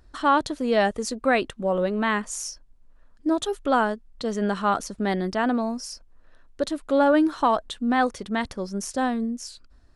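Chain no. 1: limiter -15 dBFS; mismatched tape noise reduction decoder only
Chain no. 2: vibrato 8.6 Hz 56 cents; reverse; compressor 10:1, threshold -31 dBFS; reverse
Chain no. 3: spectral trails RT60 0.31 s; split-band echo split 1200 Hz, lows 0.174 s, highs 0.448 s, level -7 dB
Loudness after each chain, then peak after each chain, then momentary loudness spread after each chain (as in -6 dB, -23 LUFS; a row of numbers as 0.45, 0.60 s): -26.5, -36.0, -23.0 LUFS; -15.0, -19.5, -7.0 dBFS; 8, 4, 12 LU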